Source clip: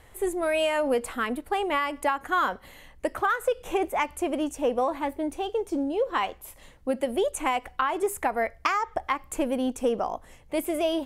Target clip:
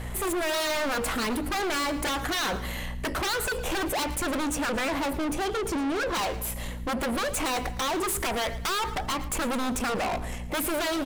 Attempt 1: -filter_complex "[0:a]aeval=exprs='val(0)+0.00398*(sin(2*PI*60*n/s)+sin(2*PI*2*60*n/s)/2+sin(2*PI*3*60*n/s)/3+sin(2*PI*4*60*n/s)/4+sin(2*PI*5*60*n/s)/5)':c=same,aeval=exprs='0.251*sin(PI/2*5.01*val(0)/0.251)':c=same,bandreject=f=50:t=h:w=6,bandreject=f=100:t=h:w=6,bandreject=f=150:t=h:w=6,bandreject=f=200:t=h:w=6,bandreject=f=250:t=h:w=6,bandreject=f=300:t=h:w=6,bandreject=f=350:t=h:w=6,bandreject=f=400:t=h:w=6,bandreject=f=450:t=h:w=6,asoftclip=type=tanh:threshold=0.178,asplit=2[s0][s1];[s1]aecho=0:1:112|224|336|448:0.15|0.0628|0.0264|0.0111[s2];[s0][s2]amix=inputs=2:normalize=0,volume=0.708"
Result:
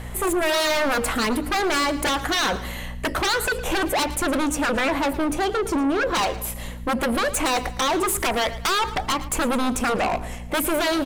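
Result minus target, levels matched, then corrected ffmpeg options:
saturation: distortion -8 dB
-filter_complex "[0:a]aeval=exprs='val(0)+0.00398*(sin(2*PI*60*n/s)+sin(2*PI*2*60*n/s)/2+sin(2*PI*3*60*n/s)/3+sin(2*PI*4*60*n/s)/4+sin(2*PI*5*60*n/s)/5)':c=same,aeval=exprs='0.251*sin(PI/2*5.01*val(0)/0.251)':c=same,bandreject=f=50:t=h:w=6,bandreject=f=100:t=h:w=6,bandreject=f=150:t=h:w=6,bandreject=f=200:t=h:w=6,bandreject=f=250:t=h:w=6,bandreject=f=300:t=h:w=6,bandreject=f=350:t=h:w=6,bandreject=f=400:t=h:w=6,bandreject=f=450:t=h:w=6,asoftclip=type=tanh:threshold=0.0668,asplit=2[s0][s1];[s1]aecho=0:1:112|224|336|448:0.15|0.0628|0.0264|0.0111[s2];[s0][s2]amix=inputs=2:normalize=0,volume=0.708"

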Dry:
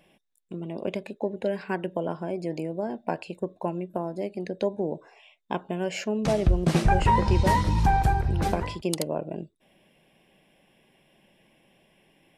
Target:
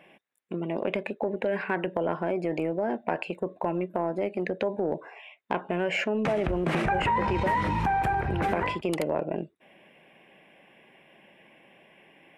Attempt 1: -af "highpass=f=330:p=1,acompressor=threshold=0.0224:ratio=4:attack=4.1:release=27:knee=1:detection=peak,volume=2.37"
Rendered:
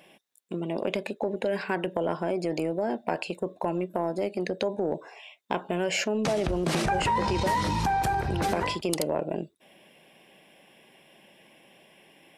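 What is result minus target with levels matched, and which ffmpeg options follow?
8 kHz band +13.0 dB
-af "highpass=f=330:p=1,highshelf=f=3300:t=q:w=1.5:g=-12.5,acompressor=threshold=0.0224:ratio=4:attack=4.1:release=27:knee=1:detection=peak,volume=2.37"

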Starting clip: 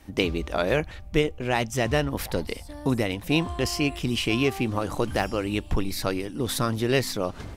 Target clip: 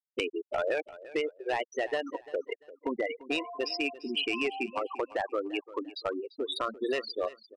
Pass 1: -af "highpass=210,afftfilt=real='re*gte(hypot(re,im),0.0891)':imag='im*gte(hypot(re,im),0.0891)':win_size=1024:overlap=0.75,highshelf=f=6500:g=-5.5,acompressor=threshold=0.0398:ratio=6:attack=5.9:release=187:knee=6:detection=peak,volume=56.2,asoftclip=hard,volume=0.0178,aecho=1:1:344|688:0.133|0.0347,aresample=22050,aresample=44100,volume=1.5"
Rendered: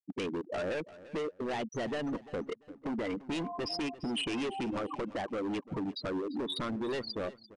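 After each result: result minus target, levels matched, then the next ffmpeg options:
overload inside the chain: distortion +11 dB; 250 Hz band +5.0 dB
-af "highpass=210,afftfilt=real='re*gte(hypot(re,im),0.0891)':imag='im*gte(hypot(re,im),0.0891)':win_size=1024:overlap=0.75,highshelf=f=6500:g=-5.5,acompressor=threshold=0.0398:ratio=6:attack=5.9:release=187:knee=6:detection=peak,volume=20,asoftclip=hard,volume=0.0501,aecho=1:1:344|688:0.133|0.0347,aresample=22050,aresample=44100,volume=1.5"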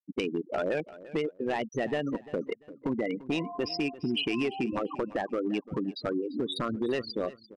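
250 Hz band +5.0 dB
-af "highpass=470,afftfilt=real='re*gte(hypot(re,im),0.0891)':imag='im*gte(hypot(re,im),0.0891)':win_size=1024:overlap=0.75,highshelf=f=6500:g=-5.5,acompressor=threshold=0.0398:ratio=6:attack=5.9:release=187:knee=6:detection=peak,volume=20,asoftclip=hard,volume=0.0501,aecho=1:1:344|688:0.133|0.0347,aresample=22050,aresample=44100,volume=1.5"

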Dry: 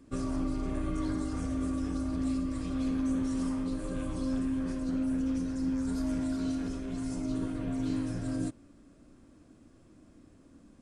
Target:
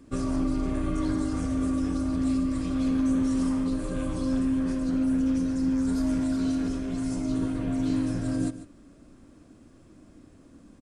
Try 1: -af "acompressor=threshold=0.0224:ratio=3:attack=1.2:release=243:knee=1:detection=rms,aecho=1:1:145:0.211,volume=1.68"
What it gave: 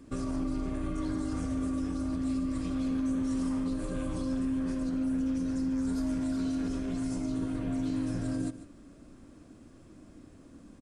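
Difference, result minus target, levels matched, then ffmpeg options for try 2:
compression: peak gain reduction +7.5 dB
-af "aecho=1:1:145:0.211,volume=1.68"

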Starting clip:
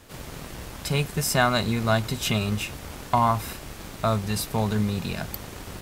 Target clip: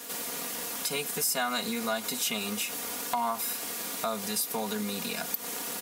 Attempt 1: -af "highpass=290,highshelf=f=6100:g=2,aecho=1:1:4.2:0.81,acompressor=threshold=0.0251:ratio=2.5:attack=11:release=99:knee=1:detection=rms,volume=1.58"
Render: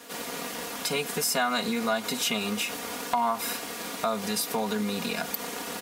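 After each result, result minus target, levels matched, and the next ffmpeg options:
compression: peak gain reduction -4.5 dB; 8 kHz band -2.5 dB
-af "highpass=290,highshelf=f=6100:g=2,aecho=1:1:4.2:0.81,acompressor=threshold=0.0119:ratio=2.5:attack=11:release=99:knee=1:detection=rms,volume=1.58"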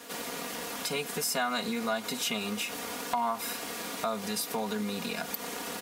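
8 kHz band -2.5 dB
-af "highpass=290,highshelf=f=6100:g=14,aecho=1:1:4.2:0.81,acompressor=threshold=0.0119:ratio=2.5:attack=11:release=99:knee=1:detection=rms,volume=1.58"

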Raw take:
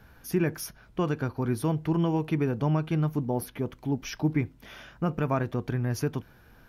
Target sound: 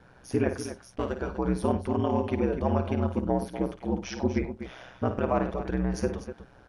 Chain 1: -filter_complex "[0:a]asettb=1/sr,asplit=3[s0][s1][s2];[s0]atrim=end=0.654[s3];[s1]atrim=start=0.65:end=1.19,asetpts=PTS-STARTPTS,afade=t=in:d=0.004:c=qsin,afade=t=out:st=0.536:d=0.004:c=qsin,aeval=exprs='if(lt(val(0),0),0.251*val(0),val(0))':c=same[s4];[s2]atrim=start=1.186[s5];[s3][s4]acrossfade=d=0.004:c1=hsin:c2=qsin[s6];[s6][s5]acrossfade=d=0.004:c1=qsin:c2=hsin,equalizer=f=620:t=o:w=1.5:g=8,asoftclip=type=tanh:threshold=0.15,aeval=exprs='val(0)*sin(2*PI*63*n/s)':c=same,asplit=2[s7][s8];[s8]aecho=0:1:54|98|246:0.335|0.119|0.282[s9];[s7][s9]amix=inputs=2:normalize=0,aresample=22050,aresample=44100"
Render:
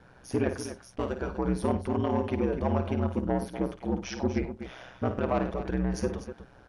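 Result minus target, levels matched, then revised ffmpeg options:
saturation: distortion +12 dB
-filter_complex "[0:a]asettb=1/sr,asplit=3[s0][s1][s2];[s0]atrim=end=0.654[s3];[s1]atrim=start=0.65:end=1.19,asetpts=PTS-STARTPTS,afade=t=in:d=0.004:c=qsin,afade=t=out:st=0.536:d=0.004:c=qsin,aeval=exprs='if(lt(val(0),0),0.251*val(0),val(0))':c=same[s4];[s2]atrim=start=1.186[s5];[s3][s4]acrossfade=d=0.004:c1=hsin:c2=qsin[s6];[s6][s5]acrossfade=d=0.004:c1=qsin:c2=hsin,equalizer=f=620:t=o:w=1.5:g=8,asoftclip=type=tanh:threshold=0.355,aeval=exprs='val(0)*sin(2*PI*63*n/s)':c=same,asplit=2[s7][s8];[s8]aecho=0:1:54|98|246:0.335|0.119|0.282[s9];[s7][s9]amix=inputs=2:normalize=0,aresample=22050,aresample=44100"

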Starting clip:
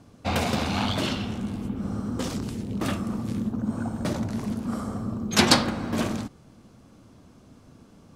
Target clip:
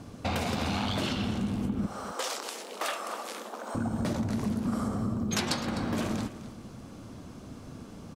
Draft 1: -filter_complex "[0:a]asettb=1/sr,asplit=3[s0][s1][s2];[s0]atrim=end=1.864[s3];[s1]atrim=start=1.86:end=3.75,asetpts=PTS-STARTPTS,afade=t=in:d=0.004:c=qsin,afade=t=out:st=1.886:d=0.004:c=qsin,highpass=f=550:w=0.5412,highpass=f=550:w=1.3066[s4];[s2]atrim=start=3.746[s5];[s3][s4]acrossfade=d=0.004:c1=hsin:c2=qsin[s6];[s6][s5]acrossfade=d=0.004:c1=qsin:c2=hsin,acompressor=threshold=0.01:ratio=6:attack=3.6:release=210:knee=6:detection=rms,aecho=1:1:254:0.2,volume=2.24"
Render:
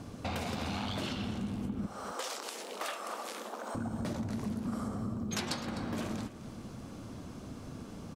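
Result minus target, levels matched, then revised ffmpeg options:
compression: peak gain reduction +6 dB
-filter_complex "[0:a]asettb=1/sr,asplit=3[s0][s1][s2];[s0]atrim=end=1.864[s3];[s1]atrim=start=1.86:end=3.75,asetpts=PTS-STARTPTS,afade=t=in:d=0.004:c=qsin,afade=t=out:st=1.886:d=0.004:c=qsin,highpass=f=550:w=0.5412,highpass=f=550:w=1.3066[s4];[s2]atrim=start=3.746[s5];[s3][s4]acrossfade=d=0.004:c1=hsin:c2=qsin[s6];[s6][s5]acrossfade=d=0.004:c1=qsin:c2=hsin,acompressor=threshold=0.0224:ratio=6:attack=3.6:release=210:knee=6:detection=rms,aecho=1:1:254:0.2,volume=2.24"

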